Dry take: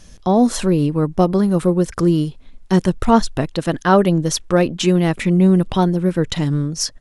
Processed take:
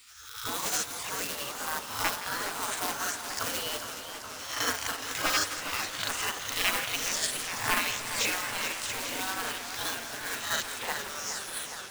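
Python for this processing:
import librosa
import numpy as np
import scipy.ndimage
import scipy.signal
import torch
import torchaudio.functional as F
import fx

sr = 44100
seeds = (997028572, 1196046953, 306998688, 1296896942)

p1 = fx.spec_swells(x, sr, rise_s=0.53)
p2 = fx.dereverb_blind(p1, sr, rt60_s=0.87)
p3 = fx.cabinet(p2, sr, low_hz=110.0, low_slope=24, high_hz=9200.0, hz=(250.0, 550.0, 1500.0, 6600.0), db=(5, 9, 10, 7))
p4 = fx.stretch_grains(p3, sr, factor=1.7, grain_ms=188.0)
p5 = fx.peak_eq(p4, sr, hz=320.0, db=9.5, octaves=0.31)
p6 = fx.quant_companded(p5, sr, bits=6)
p7 = fx.spec_gate(p6, sr, threshold_db=-25, keep='weak')
p8 = p7 + fx.echo_split(p7, sr, split_hz=750.0, low_ms=312, high_ms=168, feedback_pct=52, wet_db=-13, dry=0)
y = fx.echo_warbled(p8, sr, ms=419, feedback_pct=79, rate_hz=2.8, cents=116, wet_db=-10.0)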